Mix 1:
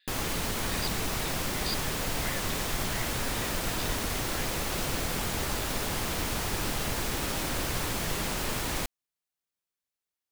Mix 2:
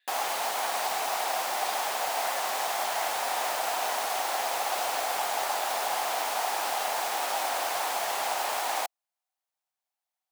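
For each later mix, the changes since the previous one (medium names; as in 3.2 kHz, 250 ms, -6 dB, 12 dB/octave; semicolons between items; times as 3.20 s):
speech: add distance through air 310 m; background: add resonant high-pass 750 Hz, resonance Q 4.6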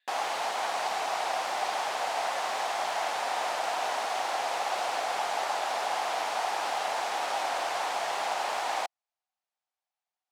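speech -3.5 dB; background: add distance through air 68 m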